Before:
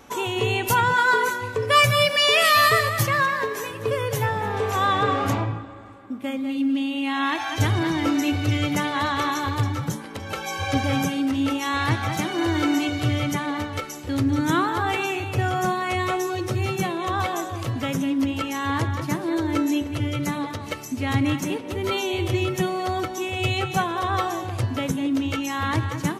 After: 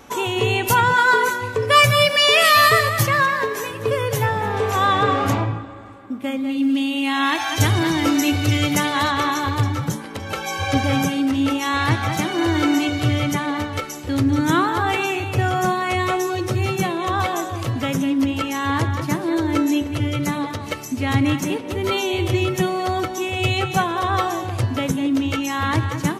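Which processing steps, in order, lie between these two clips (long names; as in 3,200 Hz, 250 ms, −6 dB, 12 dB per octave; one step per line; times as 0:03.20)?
0:06.62–0:09.11: high-shelf EQ 4,400 Hz +8 dB
level +3.5 dB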